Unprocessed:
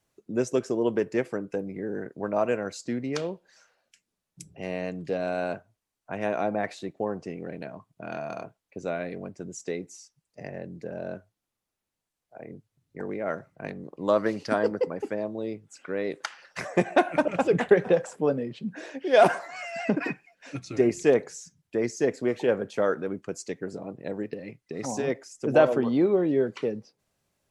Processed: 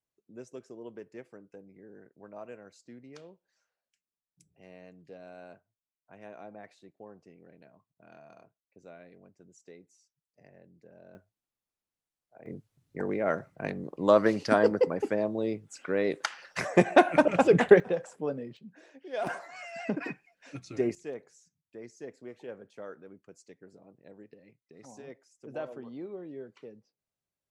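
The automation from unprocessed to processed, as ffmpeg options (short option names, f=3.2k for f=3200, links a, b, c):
-af "asetnsamples=n=441:p=0,asendcmd='11.15 volume volume -9dB;12.46 volume volume 2dB;17.8 volume volume -8dB;18.57 volume volume -16dB;19.27 volume volume -6.5dB;20.95 volume volume -18.5dB',volume=-19dB"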